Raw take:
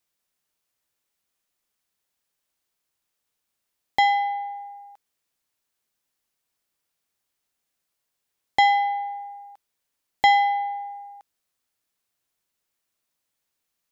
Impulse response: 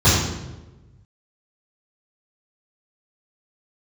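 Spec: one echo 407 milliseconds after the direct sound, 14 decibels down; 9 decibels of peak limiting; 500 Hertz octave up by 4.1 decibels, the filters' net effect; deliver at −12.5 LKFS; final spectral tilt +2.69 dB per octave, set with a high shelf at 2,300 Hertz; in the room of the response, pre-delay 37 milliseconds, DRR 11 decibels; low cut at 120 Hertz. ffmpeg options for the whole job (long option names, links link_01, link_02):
-filter_complex "[0:a]highpass=120,equalizer=frequency=500:width_type=o:gain=6,highshelf=frequency=2300:gain=-5.5,alimiter=limit=-14dB:level=0:latency=1,aecho=1:1:407:0.2,asplit=2[link_01][link_02];[1:a]atrim=start_sample=2205,adelay=37[link_03];[link_02][link_03]afir=irnorm=-1:irlink=0,volume=-33.5dB[link_04];[link_01][link_04]amix=inputs=2:normalize=0,volume=13dB"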